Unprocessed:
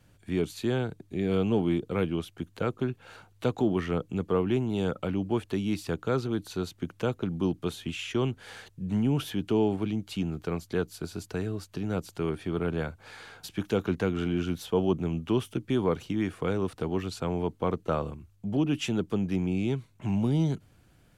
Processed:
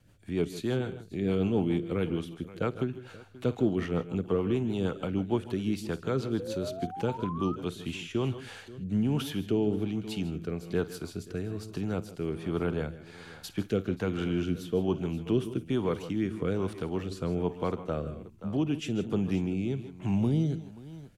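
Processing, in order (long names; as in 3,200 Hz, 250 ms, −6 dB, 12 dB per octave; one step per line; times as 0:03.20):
pitch vibrato 3.4 Hz 11 cents
multi-tap delay 52/140/158/530 ms −17.5/−17.5/−15/−18.5 dB
sound drawn into the spectrogram rise, 0:06.39–0:07.56, 480–1,300 Hz −35 dBFS
rotating-speaker cabinet horn 6.7 Hz, later 1.2 Hz, at 0:07.25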